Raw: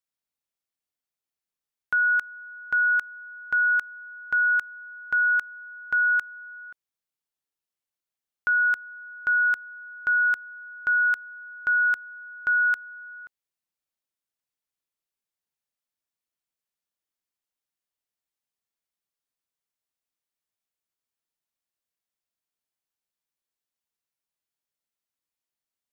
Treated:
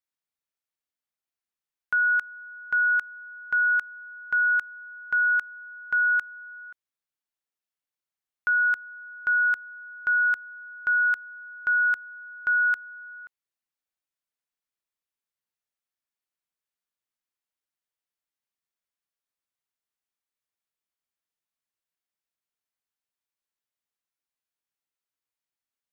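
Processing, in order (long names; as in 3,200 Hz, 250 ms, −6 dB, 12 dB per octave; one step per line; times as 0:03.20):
parametric band 1,600 Hz +4 dB 2 octaves
level −4.5 dB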